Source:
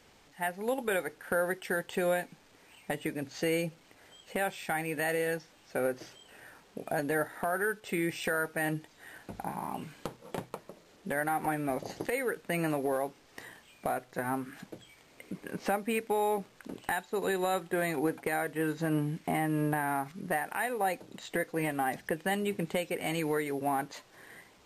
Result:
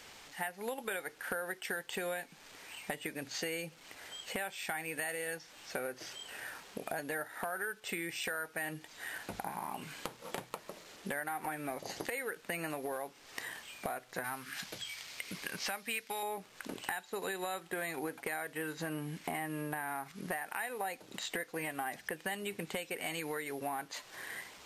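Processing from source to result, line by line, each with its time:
4.93–5.35 s: peaking EQ 9.1 kHz +6 dB 0.3 oct
14.24–16.23 s: FFT filter 130 Hz 0 dB, 320 Hz -7 dB, 5.1 kHz +9 dB, 7.6 kHz +4 dB
whole clip: tilt shelf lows -5.5 dB, about 690 Hz; compression 4:1, threshold -42 dBFS; trim +4.5 dB

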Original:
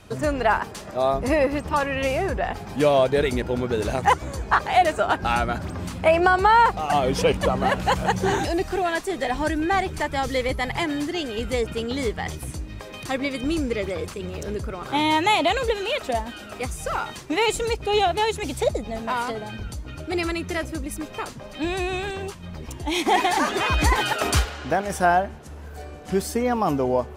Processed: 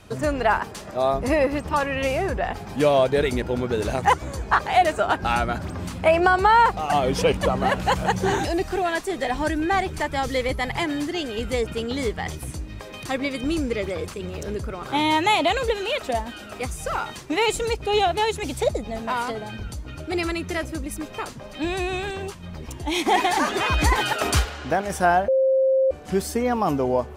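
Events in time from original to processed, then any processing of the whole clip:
25.28–25.91 s: bleep 530 Hz -15.5 dBFS

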